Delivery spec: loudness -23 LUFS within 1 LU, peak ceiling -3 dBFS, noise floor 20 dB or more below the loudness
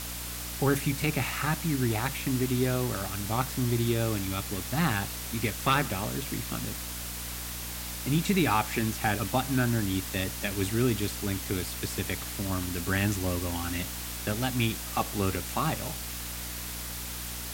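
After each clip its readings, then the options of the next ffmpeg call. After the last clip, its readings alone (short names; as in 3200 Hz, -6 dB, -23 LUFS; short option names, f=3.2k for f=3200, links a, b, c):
hum 60 Hz; harmonics up to 300 Hz; hum level -40 dBFS; noise floor -37 dBFS; noise floor target -50 dBFS; loudness -29.5 LUFS; peak -14.0 dBFS; loudness target -23.0 LUFS
-> -af "bandreject=f=60:t=h:w=6,bandreject=f=120:t=h:w=6,bandreject=f=180:t=h:w=6,bandreject=f=240:t=h:w=6,bandreject=f=300:t=h:w=6"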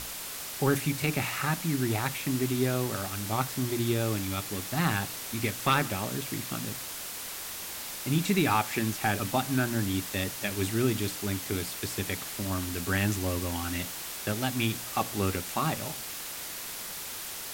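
hum none; noise floor -39 dBFS; noise floor target -50 dBFS
-> -af "afftdn=nr=11:nf=-39"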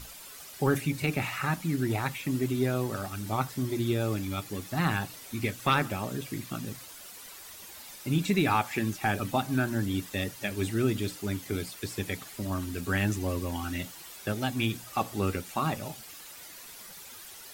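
noise floor -47 dBFS; noise floor target -51 dBFS
-> -af "afftdn=nr=6:nf=-47"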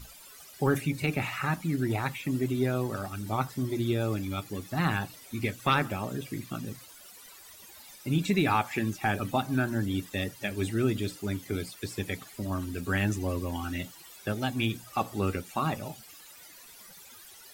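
noise floor -51 dBFS; loudness -31.0 LUFS; peak -14.0 dBFS; loudness target -23.0 LUFS
-> -af "volume=8dB"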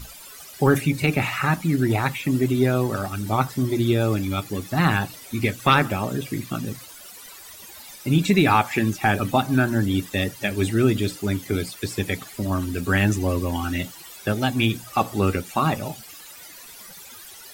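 loudness -23.0 LUFS; peak -6.0 dBFS; noise floor -43 dBFS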